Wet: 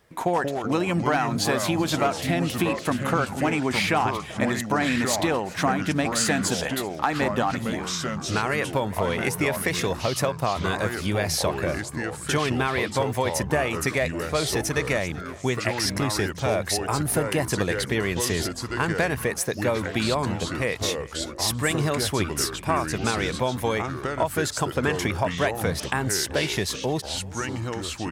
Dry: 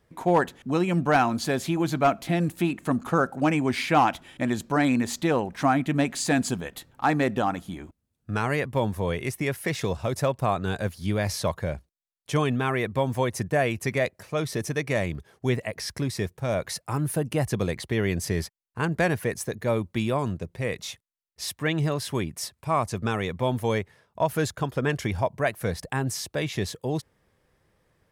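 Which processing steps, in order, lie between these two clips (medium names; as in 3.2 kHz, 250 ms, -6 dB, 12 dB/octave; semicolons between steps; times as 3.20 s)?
bass shelf 400 Hz -8 dB; compression, threshold -29 dBFS, peak gain reduction 11.5 dB; ever faster or slower copies 116 ms, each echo -4 st, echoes 3, each echo -6 dB; delay 384 ms -21.5 dB; trim +8.5 dB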